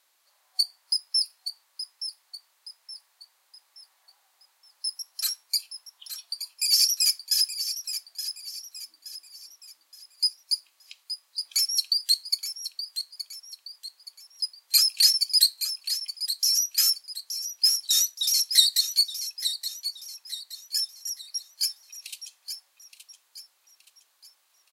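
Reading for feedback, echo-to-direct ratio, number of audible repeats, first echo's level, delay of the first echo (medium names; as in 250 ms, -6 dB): 40%, -9.5 dB, 4, -10.0 dB, 872 ms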